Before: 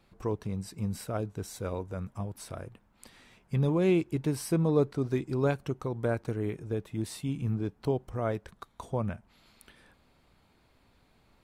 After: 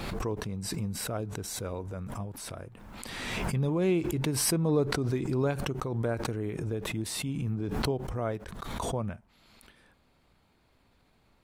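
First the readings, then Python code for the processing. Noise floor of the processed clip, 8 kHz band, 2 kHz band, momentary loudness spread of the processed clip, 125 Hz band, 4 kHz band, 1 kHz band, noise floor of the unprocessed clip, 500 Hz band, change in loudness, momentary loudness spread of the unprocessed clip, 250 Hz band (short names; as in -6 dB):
-67 dBFS, +10.0 dB, +4.5 dB, 12 LU, 0.0 dB, +10.0 dB, +2.0 dB, -66 dBFS, -1.0 dB, 0.0 dB, 13 LU, -0.5 dB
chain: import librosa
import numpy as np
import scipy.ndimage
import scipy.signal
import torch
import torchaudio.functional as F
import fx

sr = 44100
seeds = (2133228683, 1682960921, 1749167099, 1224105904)

y = fx.pre_swell(x, sr, db_per_s=28.0)
y = y * librosa.db_to_amplitude(-2.0)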